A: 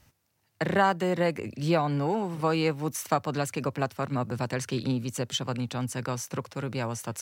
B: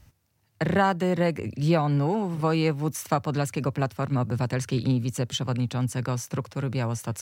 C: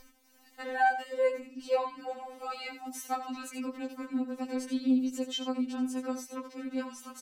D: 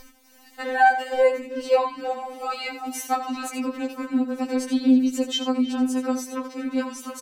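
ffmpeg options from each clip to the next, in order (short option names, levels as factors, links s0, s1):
-af "lowshelf=f=150:g=11.5"
-af "acompressor=mode=upward:threshold=0.0224:ratio=2.5,aecho=1:1:82:0.282,afftfilt=real='re*3.46*eq(mod(b,12),0)':imag='im*3.46*eq(mod(b,12),0)':win_size=2048:overlap=0.75,volume=0.531"
-filter_complex "[0:a]asplit=2[s0][s1];[s1]adelay=320,highpass=300,lowpass=3400,asoftclip=type=hard:threshold=0.0562,volume=0.224[s2];[s0][s2]amix=inputs=2:normalize=0,volume=2.82"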